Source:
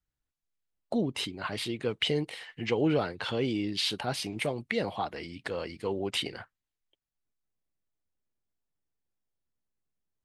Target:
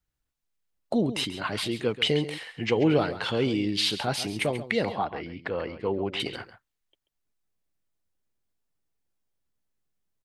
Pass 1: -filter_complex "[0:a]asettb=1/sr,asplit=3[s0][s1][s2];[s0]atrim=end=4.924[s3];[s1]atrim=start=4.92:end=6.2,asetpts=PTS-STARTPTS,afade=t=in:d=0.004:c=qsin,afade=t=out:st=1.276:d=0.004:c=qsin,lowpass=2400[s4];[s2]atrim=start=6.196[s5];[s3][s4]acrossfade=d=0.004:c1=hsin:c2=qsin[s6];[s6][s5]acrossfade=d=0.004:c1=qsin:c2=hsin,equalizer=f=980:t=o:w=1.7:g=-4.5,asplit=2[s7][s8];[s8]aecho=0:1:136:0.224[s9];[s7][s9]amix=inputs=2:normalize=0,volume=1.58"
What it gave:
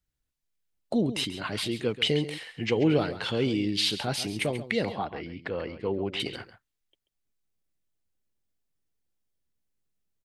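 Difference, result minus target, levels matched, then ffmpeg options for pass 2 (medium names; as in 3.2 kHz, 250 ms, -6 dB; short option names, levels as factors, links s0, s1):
1 kHz band -3.0 dB
-filter_complex "[0:a]asettb=1/sr,asplit=3[s0][s1][s2];[s0]atrim=end=4.924[s3];[s1]atrim=start=4.92:end=6.2,asetpts=PTS-STARTPTS,afade=t=in:d=0.004:c=qsin,afade=t=out:st=1.276:d=0.004:c=qsin,lowpass=2400[s4];[s2]atrim=start=6.196[s5];[s3][s4]acrossfade=d=0.004:c1=hsin:c2=qsin[s6];[s6][s5]acrossfade=d=0.004:c1=qsin:c2=hsin,asplit=2[s7][s8];[s8]aecho=0:1:136:0.224[s9];[s7][s9]amix=inputs=2:normalize=0,volume=1.58"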